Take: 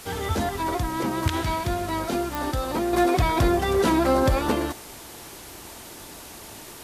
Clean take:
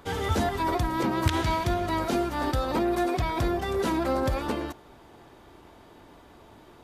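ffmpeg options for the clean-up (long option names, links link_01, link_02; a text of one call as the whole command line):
ffmpeg -i in.wav -af "adeclick=threshold=4,afwtdn=0.0079,asetnsamples=nb_out_samples=441:pad=0,asendcmd='2.93 volume volume -6dB',volume=0dB" out.wav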